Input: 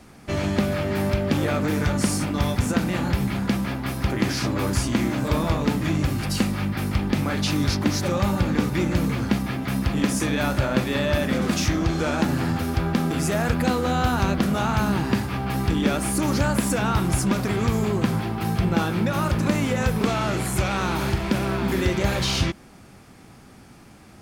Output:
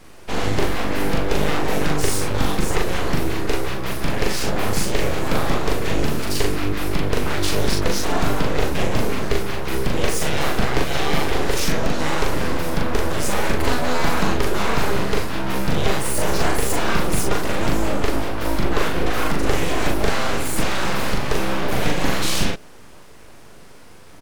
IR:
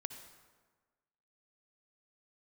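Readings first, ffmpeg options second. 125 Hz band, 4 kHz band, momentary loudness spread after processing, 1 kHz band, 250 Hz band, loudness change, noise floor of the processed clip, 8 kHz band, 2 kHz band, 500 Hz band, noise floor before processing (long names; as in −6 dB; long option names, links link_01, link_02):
−2.5 dB, +4.0 dB, 3 LU, +3.0 dB, −3.0 dB, +0.5 dB, −40 dBFS, +4.0 dB, +3.5 dB, +3.5 dB, −48 dBFS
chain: -filter_complex "[0:a]aeval=exprs='abs(val(0))':channel_layout=same,asplit=2[link_01][link_02];[link_02]adelay=40,volume=-2.5dB[link_03];[link_01][link_03]amix=inputs=2:normalize=0,volume=3dB"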